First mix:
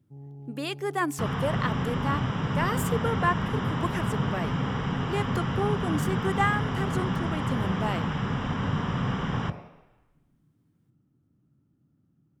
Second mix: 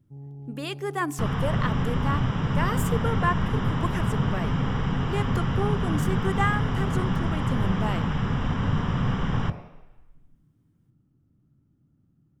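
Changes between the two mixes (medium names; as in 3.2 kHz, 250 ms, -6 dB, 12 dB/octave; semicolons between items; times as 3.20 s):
speech: send +6.5 dB; master: remove high-pass 140 Hz 6 dB/octave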